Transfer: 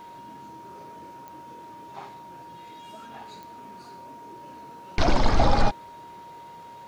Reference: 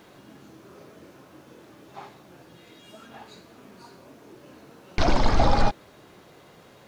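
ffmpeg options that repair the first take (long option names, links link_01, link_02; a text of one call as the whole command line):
ffmpeg -i in.wav -af "adeclick=threshold=4,bandreject=frequency=940:width=30" out.wav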